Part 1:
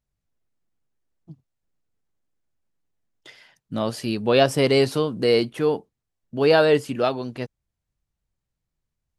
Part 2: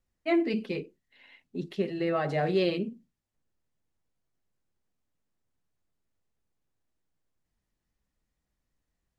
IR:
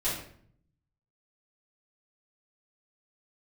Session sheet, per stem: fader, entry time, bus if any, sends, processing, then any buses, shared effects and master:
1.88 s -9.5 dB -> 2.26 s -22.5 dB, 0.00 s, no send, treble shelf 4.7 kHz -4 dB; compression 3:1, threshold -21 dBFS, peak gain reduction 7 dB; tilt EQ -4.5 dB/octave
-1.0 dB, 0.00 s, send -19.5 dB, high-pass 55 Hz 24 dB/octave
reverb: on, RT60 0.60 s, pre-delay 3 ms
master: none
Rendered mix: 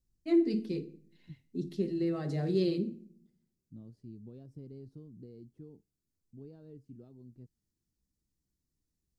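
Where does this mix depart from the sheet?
stem 1 -9.5 dB -> -17.0 dB; master: extra high-order bell 1.3 kHz -14.5 dB 3 oct

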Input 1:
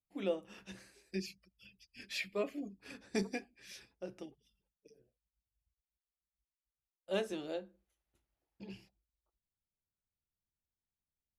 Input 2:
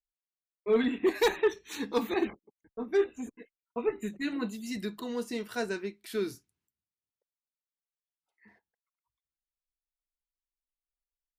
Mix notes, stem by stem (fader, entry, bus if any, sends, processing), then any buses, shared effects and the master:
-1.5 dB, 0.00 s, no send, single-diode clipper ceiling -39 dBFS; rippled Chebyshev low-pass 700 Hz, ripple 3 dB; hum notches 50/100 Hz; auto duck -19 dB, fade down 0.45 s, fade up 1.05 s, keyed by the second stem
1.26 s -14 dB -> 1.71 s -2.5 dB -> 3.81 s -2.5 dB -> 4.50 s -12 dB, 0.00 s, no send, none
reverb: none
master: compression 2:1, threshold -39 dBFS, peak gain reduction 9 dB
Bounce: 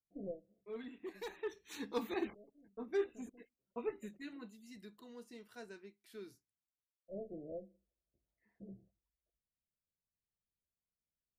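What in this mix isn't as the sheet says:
stem 2 -14.0 dB -> -20.5 dB; master: missing compression 2:1, threshold -39 dBFS, peak gain reduction 9 dB

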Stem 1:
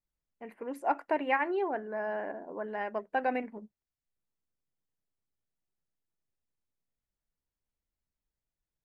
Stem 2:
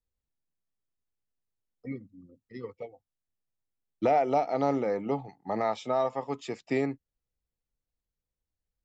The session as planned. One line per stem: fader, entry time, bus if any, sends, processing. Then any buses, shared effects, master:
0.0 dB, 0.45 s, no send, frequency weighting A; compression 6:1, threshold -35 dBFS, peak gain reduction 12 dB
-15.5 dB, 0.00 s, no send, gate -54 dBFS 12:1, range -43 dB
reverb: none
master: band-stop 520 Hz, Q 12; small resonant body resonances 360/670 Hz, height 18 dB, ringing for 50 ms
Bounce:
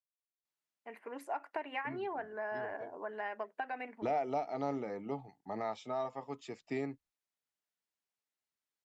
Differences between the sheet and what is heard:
stem 2 -15.5 dB -> -9.0 dB; master: missing small resonant body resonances 360/670 Hz, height 18 dB, ringing for 50 ms

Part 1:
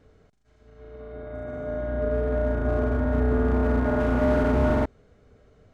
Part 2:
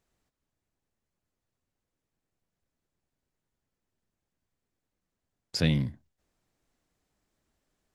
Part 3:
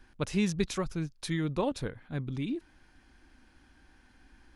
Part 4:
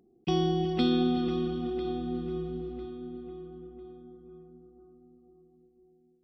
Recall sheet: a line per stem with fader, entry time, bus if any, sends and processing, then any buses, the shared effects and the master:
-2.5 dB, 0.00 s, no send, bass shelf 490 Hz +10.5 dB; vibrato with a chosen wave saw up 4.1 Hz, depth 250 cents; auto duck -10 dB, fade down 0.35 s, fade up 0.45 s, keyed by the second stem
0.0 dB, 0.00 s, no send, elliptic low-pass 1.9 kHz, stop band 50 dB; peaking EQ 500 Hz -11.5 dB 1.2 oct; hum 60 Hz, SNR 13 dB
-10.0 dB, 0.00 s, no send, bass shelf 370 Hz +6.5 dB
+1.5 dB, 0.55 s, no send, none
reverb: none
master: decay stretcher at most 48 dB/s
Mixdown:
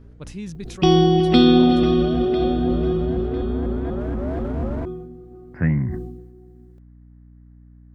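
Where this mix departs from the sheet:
stem 2 0.0 dB -> +8.0 dB; stem 4 +1.5 dB -> +12.0 dB

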